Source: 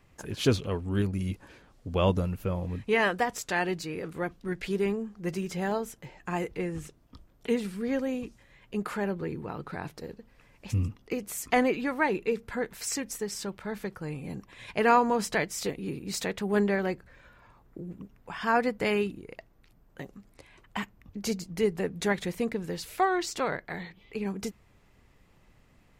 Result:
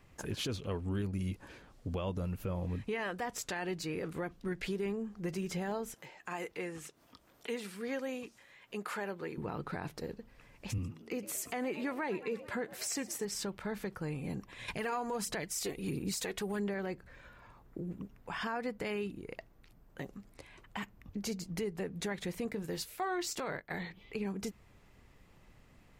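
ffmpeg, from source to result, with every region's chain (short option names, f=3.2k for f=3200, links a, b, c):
-filter_complex "[0:a]asettb=1/sr,asplit=3[a][b][c];[a]atrim=end=5.944[d];[b]atrim=start=5.94:end=9.38,asetpts=PTS-STARTPTS,afade=t=in:d=0.004:c=qsin,afade=t=out:st=3.436:d=0.004:c=qsin,highpass=f=680:p=1,acompressor=mode=upward:threshold=-54dB:ratio=2.5:attack=3.2:release=140:knee=2.83:detection=peak[e];[c]atrim=start=9.376[f];[d][e]acrossfade=d=0.004:c1=hsin:c2=qsin[g];[g][f]acrossfade=d=0.004:c1=qsin:c2=hsin,asettb=1/sr,asplit=3[h][i][j];[h]atrim=end=10.784[k];[i]atrim=start=10.78:end=13.25,asetpts=PTS-STARTPTS,afade=t=in:d=0.004:c=qsin,afade=t=out:st=2.466:d=0.004:c=qsin,highpass=110,asplit=6[l][m][n][o][p][q];[m]adelay=111,afreqshift=69,volume=-20.5dB[r];[n]adelay=222,afreqshift=138,volume=-24.9dB[s];[o]adelay=333,afreqshift=207,volume=-29.4dB[t];[p]adelay=444,afreqshift=276,volume=-33.8dB[u];[q]adelay=555,afreqshift=345,volume=-38.2dB[v];[l][r][s][t][u][v]amix=inputs=6:normalize=0,atrim=end_sample=108927[w];[j]atrim=start=13.246[x];[k][w]acrossfade=d=0.004:c1=hsin:c2=qsin[y];[y][x]acrossfade=d=0.004:c1=qsin:c2=hsin,asettb=1/sr,asplit=3[z][aa][ab];[z]atrim=end=14.684[ac];[aa]atrim=start=14.68:end=16.74,asetpts=PTS-STARTPTS,afade=t=in:d=0.004:c=qsin,afade=t=out:st=2.056:d=0.004:c=qsin,equalizer=f=11k:w=0.45:g=8.5,aphaser=in_gain=1:out_gain=1:delay=2.8:decay=0.44:speed=1.5:type=sinusoidal[ad];[ab]atrim=start=16.736[ae];[ac][ad]acrossfade=d=0.004:c1=hsin:c2=qsin[af];[af][ae]acrossfade=d=0.004:c1=qsin:c2=hsin,asettb=1/sr,asplit=3[ag][ah][ai];[ag]atrim=end=22.454[aj];[ah]atrim=start=22.45:end=23.79,asetpts=PTS-STARTPTS,afade=t=in:d=0.004:c=qsin,afade=t=out:st=1.336:d=0.004:c=qsin,agate=range=-9dB:threshold=-40dB:ratio=16:release=100:detection=peak,highshelf=f=11k:g=9.5,asplit=2[ak][al];[al]adelay=20,volume=-12.5dB[am];[ak][am]amix=inputs=2:normalize=0,atrim=end_sample=59094[an];[ai]atrim=start=23.786[ao];[aj][an]acrossfade=d=0.004:c1=hsin:c2=qsin[ap];[ap][ao]acrossfade=d=0.004:c1=qsin:c2=hsin,acompressor=threshold=-34dB:ratio=2.5,alimiter=level_in=3.5dB:limit=-24dB:level=0:latency=1:release=31,volume=-3.5dB"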